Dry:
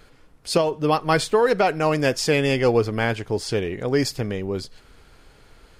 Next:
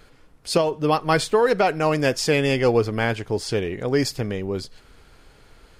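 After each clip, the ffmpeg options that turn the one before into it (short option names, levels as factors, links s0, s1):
-af anull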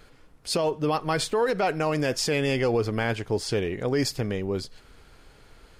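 -af "alimiter=limit=0.2:level=0:latency=1:release=47,volume=0.841"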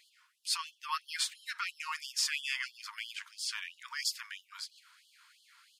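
-filter_complex "[0:a]asplit=2[s0][s1];[s1]adelay=1516,volume=0.0794,highshelf=f=4000:g=-34.1[s2];[s0][s2]amix=inputs=2:normalize=0,afftfilt=real='re*gte(b*sr/1024,870*pow(2900/870,0.5+0.5*sin(2*PI*3*pts/sr)))':imag='im*gte(b*sr/1024,870*pow(2900/870,0.5+0.5*sin(2*PI*3*pts/sr)))':win_size=1024:overlap=0.75,volume=0.75"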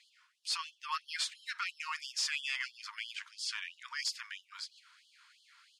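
-af "volume=21.1,asoftclip=hard,volume=0.0473,highpass=800,lowpass=7400"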